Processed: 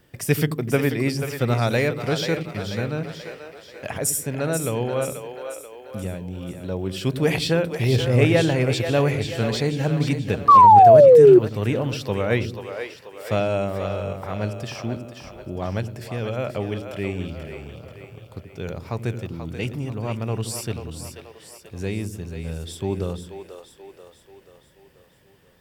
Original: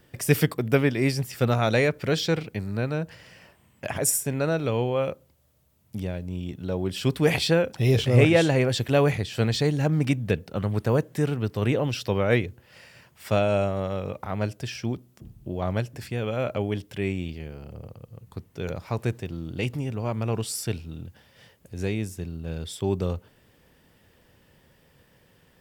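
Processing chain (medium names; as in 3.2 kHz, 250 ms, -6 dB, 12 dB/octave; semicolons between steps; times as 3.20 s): two-band feedback delay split 370 Hz, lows 84 ms, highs 485 ms, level -8 dB; painted sound fall, 10.48–11.39 s, 350–1200 Hz -9 dBFS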